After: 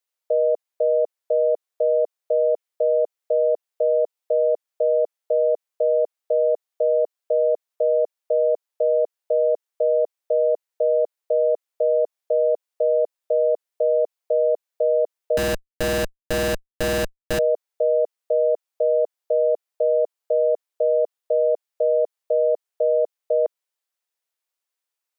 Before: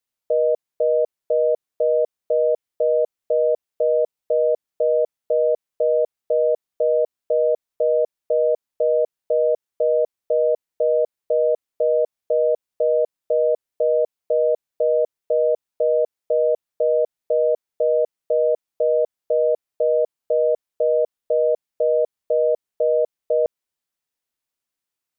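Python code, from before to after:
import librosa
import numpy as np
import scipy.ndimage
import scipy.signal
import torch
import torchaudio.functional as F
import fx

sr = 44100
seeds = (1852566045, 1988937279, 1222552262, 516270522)

y = scipy.signal.sosfilt(scipy.signal.butter(4, 420.0, 'highpass', fs=sr, output='sos'), x)
y = fx.schmitt(y, sr, flips_db=-23.0, at=(15.37, 17.39))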